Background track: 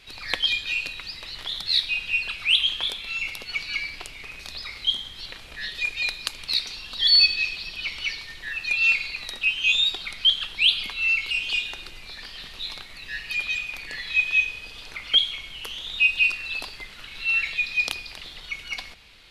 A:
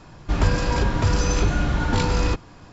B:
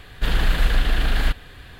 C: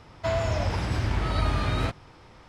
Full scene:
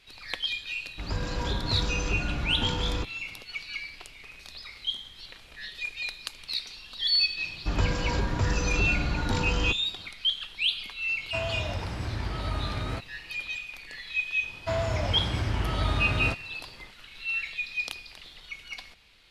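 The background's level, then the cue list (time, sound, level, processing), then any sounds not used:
background track −7.5 dB
0:00.69: mix in A −9 dB + fade in at the beginning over 0.65 s
0:07.37: mix in A −6.5 dB
0:11.09: mix in C −6 dB
0:14.43: mix in C −2 dB
not used: B

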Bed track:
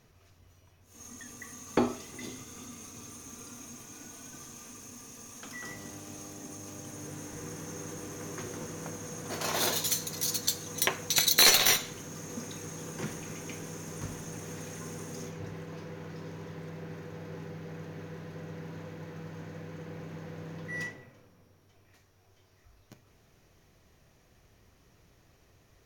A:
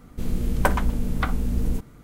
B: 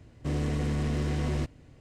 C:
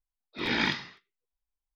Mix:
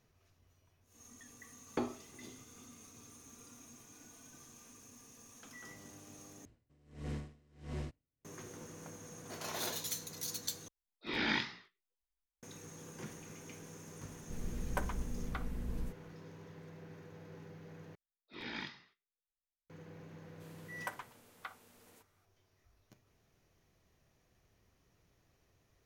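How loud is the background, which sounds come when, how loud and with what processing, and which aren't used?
bed track −10 dB
0:06.45: overwrite with B −10 dB + tremolo with a sine in dB 1.5 Hz, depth 31 dB
0:10.68: overwrite with C −3.5 dB + chorus effect 2.2 Hz, delay 16.5 ms, depth 7.3 ms
0:14.12: mix in A −16 dB
0:17.95: overwrite with C −16 dB
0:20.22: mix in A −17.5 dB + high-pass filter 770 Hz

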